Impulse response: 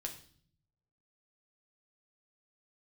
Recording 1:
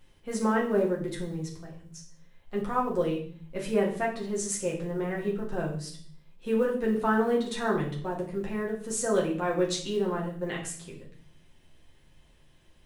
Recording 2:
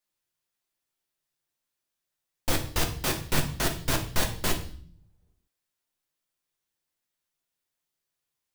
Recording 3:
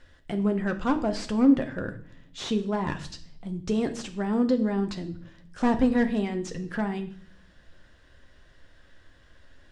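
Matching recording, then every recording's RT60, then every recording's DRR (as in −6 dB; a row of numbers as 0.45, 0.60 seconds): 2; 0.50, 0.50, 0.55 seconds; −3.0, 2.0, 6.0 decibels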